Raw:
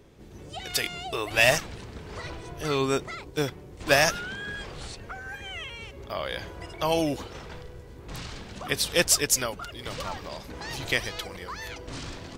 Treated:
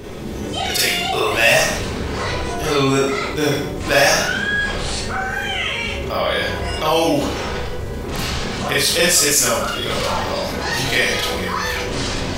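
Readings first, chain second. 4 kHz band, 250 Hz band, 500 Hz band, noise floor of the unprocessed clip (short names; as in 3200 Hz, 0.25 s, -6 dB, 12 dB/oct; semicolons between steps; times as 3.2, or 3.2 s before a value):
+11.0 dB, +11.5 dB, +10.0 dB, -46 dBFS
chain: Schroeder reverb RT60 0.48 s, combs from 30 ms, DRR -8.5 dB; fast leveller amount 50%; gain -3.5 dB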